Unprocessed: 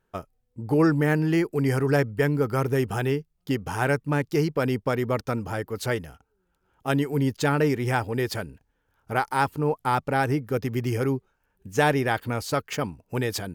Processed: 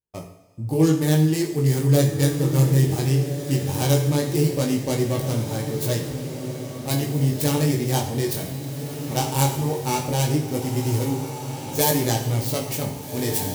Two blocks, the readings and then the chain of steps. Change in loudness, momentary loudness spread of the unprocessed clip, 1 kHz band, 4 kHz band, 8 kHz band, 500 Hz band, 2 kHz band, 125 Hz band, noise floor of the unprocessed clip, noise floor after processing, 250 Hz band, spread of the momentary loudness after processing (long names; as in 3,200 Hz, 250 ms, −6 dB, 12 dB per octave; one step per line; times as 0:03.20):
+3.0 dB, 9 LU, −2.5 dB, +7.0 dB, +12.5 dB, +0.5 dB, −6.0 dB, +6.5 dB, −73 dBFS, −34 dBFS, +3.0 dB, 12 LU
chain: stylus tracing distortion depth 0.42 ms
bass and treble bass +6 dB, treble +12 dB
chorus effect 0.17 Hz, delay 18 ms, depth 4.1 ms
noise gate with hold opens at −39 dBFS
high-pass filter 56 Hz
parametric band 1,400 Hz −12 dB 0.55 octaves
feedback delay with all-pass diffusion 1,567 ms, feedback 42%, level −9 dB
coupled-rooms reverb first 0.66 s, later 2.9 s, from −16 dB, DRR 2.5 dB